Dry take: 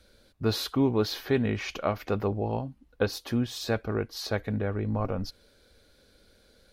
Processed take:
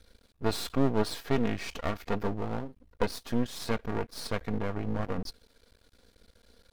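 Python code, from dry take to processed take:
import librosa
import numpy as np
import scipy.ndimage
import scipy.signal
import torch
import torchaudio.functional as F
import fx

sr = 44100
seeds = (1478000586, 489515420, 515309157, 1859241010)

y = fx.peak_eq(x, sr, hz=61.0, db=6.0, octaves=1.5)
y = y + 0.5 * np.pad(y, (int(4.3 * sr / 1000.0), 0))[:len(y)]
y = np.maximum(y, 0.0)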